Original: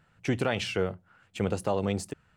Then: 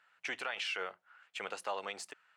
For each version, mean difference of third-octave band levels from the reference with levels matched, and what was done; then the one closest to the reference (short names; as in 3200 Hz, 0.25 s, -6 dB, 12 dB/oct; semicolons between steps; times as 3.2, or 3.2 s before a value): 9.0 dB: HPF 1300 Hz 12 dB/oct; limiter -27.5 dBFS, peak gain reduction 8.5 dB; LPF 2400 Hz 6 dB/oct; gain +4 dB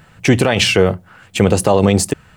2.0 dB: high shelf 7900 Hz +6 dB; notch 1400 Hz, Q 15; maximiser +19.5 dB; gain -1 dB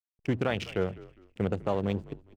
4.5 dB: Wiener smoothing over 41 samples; backlash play -49 dBFS; frequency-shifting echo 0.203 s, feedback 33%, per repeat -54 Hz, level -19 dB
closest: second